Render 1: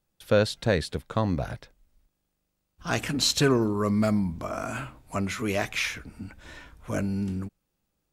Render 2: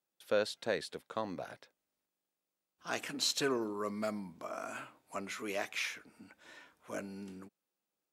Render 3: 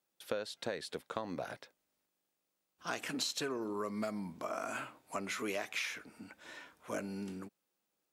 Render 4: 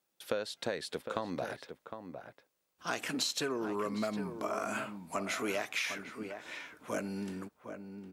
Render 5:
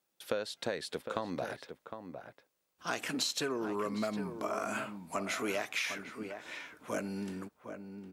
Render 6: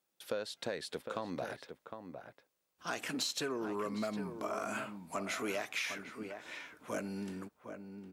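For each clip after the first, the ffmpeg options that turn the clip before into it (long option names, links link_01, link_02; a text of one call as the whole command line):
ffmpeg -i in.wav -af "highpass=320,volume=-8.5dB" out.wav
ffmpeg -i in.wav -af "acompressor=threshold=-38dB:ratio=12,volume=4.5dB" out.wav
ffmpeg -i in.wav -filter_complex "[0:a]asplit=2[link_01][link_02];[link_02]adelay=758,volume=-8dB,highshelf=frequency=4000:gain=-17.1[link_03];[link_01][link_03]amix=inputs=2:normalize=0,volume=3dB" out.wav
ffmpeg -i in.wav -af anull out.wav
ffmpeg -i in.wav -af "asoftclip=type=tanh:threshold=-21dB,volume=-2dB" out.wav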